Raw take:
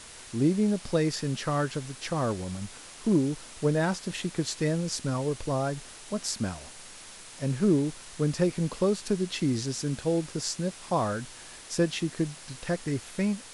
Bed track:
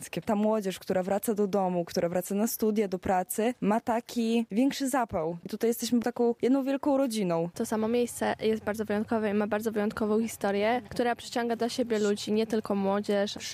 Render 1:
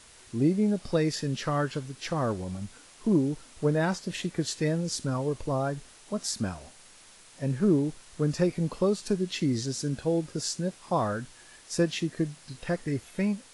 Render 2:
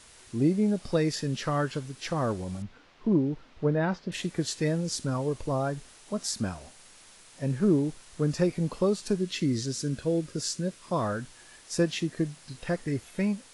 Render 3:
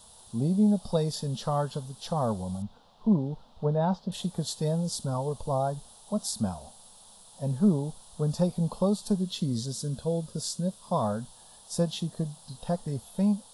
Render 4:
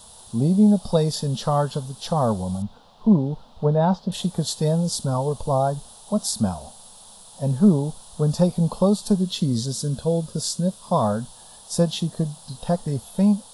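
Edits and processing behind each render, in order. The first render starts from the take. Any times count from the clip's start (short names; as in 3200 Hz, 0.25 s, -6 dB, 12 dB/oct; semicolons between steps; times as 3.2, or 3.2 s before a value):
noise print and reduce 7 dB
2.62–4.12 air absorption 240 m; 9.25–11.04 bell 800 Hz -12 dB 0.28 oct
EQ curve 140 Hz 0 dB, 220 Hz +4 dB, 310 Hz -14 dB, 450 Hz -2 dB, 860 Hz +6 dB, 2200 Hz -22 dB, 3500 Hz +2 dB, 6300 Hz -5 dB, 12000 Hz +8 dB
gain +7 dB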